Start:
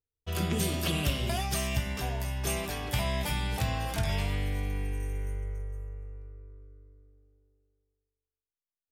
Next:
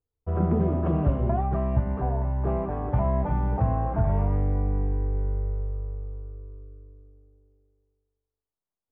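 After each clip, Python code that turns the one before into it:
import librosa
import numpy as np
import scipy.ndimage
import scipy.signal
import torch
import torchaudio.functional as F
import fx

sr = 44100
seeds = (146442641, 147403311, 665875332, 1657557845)

y = scipy.signal.sosfilt(scipy.signal.butter(4, 1100.0, 'lowpass', fs=sr, output='sos'), x)
y = y * 10.0 ** (7.0 / 20.0)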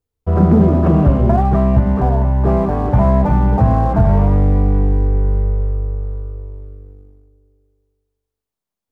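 y = fx.peak_eq(x, sr, hz=210.0, db=6.0, octaves=0.38)
y = fx.leveller(y, sr, passes=1)
y = y * 10.0 ** (8.0 / 20.0)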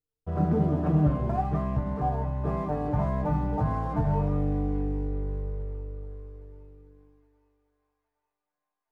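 y = fx.comb_fb(x, sr, f0_hz=150.0, decay_s=0.17, harmonics='all', damping=0.0, mix_pct=90)
y = fx.echo_wet_highpass(y, sr, ms=816, feedback_pct=52, hz=2000.0, wet_db=-15.5)
y = y * 10.0 ** (-4.0 / 20.0)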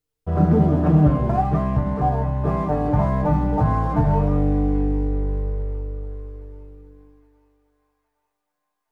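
y = fx.doubler(x, sr, ms=37.0, db=-13.5)
y = y * 10.0 ** (7.5 / 20.0)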